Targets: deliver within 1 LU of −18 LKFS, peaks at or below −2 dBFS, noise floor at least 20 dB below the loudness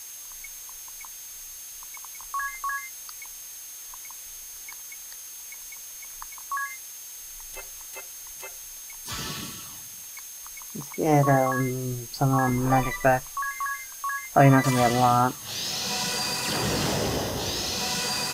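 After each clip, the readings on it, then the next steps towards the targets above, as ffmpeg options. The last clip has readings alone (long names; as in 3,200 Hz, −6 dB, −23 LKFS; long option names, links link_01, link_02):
interfering tone 6,400 Hz; level of the tone −42 dBFS; background noise floor −41 dBFS; target noise floor −47 dBFS; integrated loudness −26.5 LKFS; sample peak −5.5 dBFS; target loudness −18.0 LKFS
→ -af "bandreject=frequency=6400:width=30"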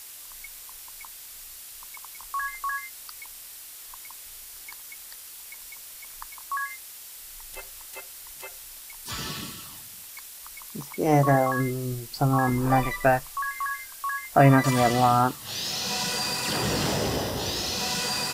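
interfering tone none found; background noise floor −44 dBFS; target noise floor −45 dBFS
→ -af "afftdn=noise_reduction=6:noise_floor=-44"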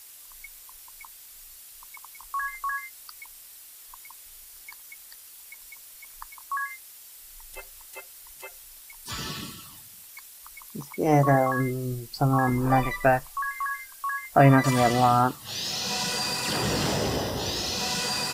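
background noise floor −48 dBFS; integrated loudness −25.0 LKFS; sample peak −5.5 dBFS; target loudness −18.0 LKFS
→ -af "volume=7dB,alimiter=limit=-2dB:level=0:latency=1"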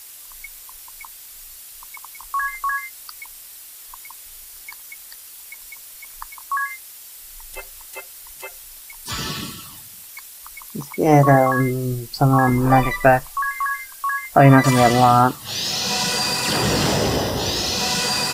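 integrated loudness −18.5 LKFS; sample peak −2.0 dBFS; background noise floor −41 dBFS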